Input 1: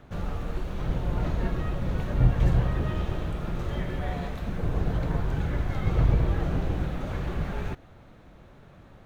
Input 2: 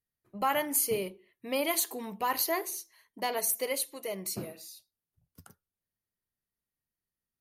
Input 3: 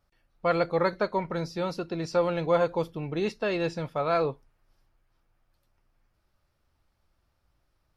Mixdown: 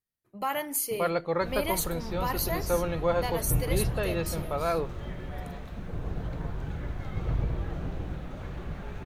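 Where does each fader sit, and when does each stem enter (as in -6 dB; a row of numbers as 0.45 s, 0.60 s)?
-7.0 dB, -2.0 dB, -3.0 dB; 1.30 s, 0.00 s, 0.55 s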